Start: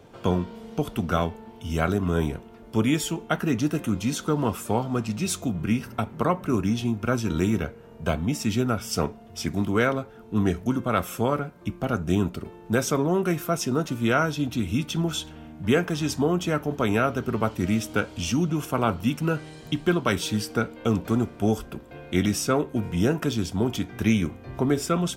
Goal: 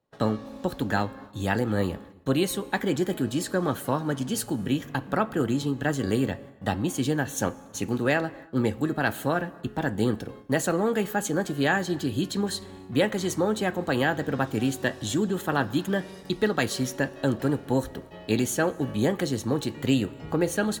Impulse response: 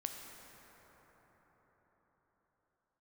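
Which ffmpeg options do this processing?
-filter_complex "[0:a]asetrate=53361,aresample=44100,agate=range=-27dB:threshold=-43dB:ratio=16:detection=peak,asplit=2[link_01][link_02];[1:a]atrim=start_sample=2205,afade=type=out:start_time=0.38:duration=0.01,atrim=end_sample=17199[link_03];[link_02][link_03]afir=irnorm=-1:irlink=0,volume=-11.5dB[link_04];[link_01][link_04]amix=inputs=2:normalize=0,volume=-3dB"

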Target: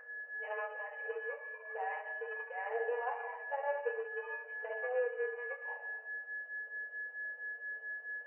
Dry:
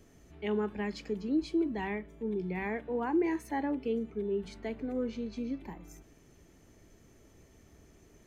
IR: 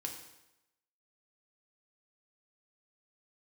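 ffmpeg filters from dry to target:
-filter_complex "[0:a]aeval=exprs='val(0)+0.0158*sin(2*PI*1700*n/s)':channel_layout=same,acompressor=threshold=-33dB:ratio=6[link_01];[1:a]atrim=start_sample=2205,asetrate=36162,aresample=44100[link_02];[link_01][link_02]afir=irnorm=-1:irlink=0,adynamicsmooth=sensitivity=0.5:basefreq=580,afftfilt=real='re*between(b*sr/4096,440,3000)':imag='im*between(b*sr/4096,440,3000)':win_size=4096:overlap=0.75,flanger=delay=7.6:depth=3.3:regen=-10:speed=0.41:shape=triangular,volume=13dB"

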